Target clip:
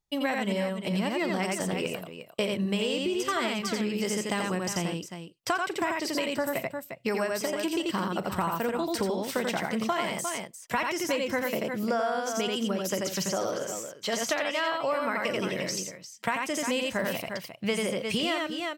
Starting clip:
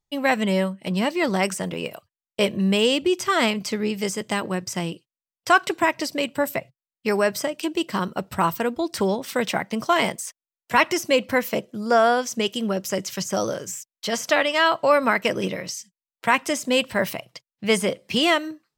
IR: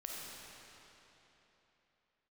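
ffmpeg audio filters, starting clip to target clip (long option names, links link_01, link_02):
-filter_complex "[0:a]asettb=1/sr,asplit=3[link_01][link_02][link_03];[link_01]atrim=end=13.294[link_04];[link_02]atrim=start=13.29:end=14.14,asetpts=PTS-STARTPTS,afade=type=in:duration=0.004:curve=qsin,afade=type=out:start_time=0.846:duration=0.004:curve=qsin,bass=frequency=250:gain=-7,treble=frequency=4000:gain=-5[link_05];[link_03]atrim=start=14.136[link_06];[link_04][link_05]acrossfade=duration=0.004:curve1=hsin:curve2=qsin[link_07];[link_07][link_06]acrossfade=duration=0.004:curve1=qsin:curve2=hsin,asplit=2[link_08][link_09];[link_09]aecho=0:1:40|86|352:0.158|0.708|0.251[link_10];[link_08][link_10]amix=inputs=2:normalize=0,acompressor=threshold=-24dB:ratio=6,volume=-1.5dB"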